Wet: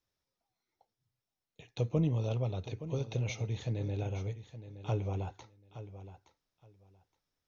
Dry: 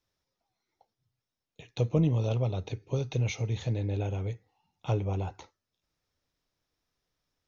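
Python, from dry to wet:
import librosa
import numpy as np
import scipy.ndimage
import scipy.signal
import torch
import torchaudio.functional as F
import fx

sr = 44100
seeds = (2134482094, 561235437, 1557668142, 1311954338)

y = fx.echo_feedback(x, sr, ms=869, feedback_pct=18, wet_db=-13.0)
y = y * 10.0 ** (-4.5 / 20.0)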